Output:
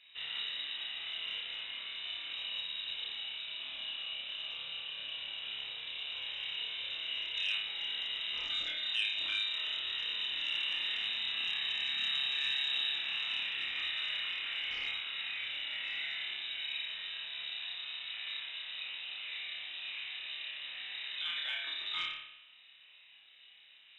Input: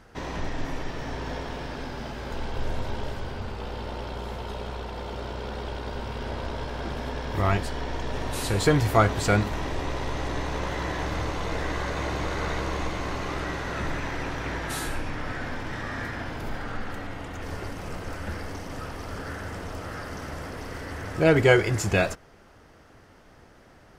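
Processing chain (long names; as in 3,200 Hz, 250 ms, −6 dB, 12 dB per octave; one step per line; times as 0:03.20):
high-frequency loss of the air 460 metres
downward compressor 12 to 1, threshold −24 dBFS, peak gain reduction 11 dB
low shelf with overshoot 670 Hz −7 dB, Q 3
flutter between parallel walls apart 4.9 metres, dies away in 0.78 s
voice inversion scrambler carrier 3,800 Hz
saturating transformer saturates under 1,500 Hz
level −6.5 dB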